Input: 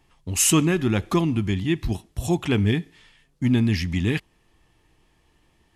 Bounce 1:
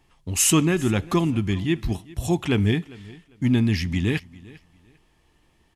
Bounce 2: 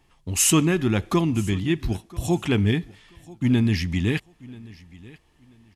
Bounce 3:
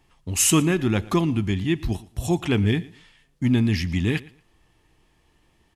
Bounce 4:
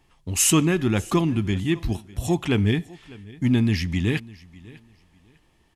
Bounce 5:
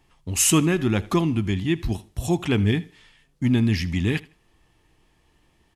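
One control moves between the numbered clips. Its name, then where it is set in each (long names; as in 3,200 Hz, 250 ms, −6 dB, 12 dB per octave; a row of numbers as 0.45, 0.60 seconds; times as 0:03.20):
repeating echo, delay time: 399, 985, 116, 600, 79 milliseconds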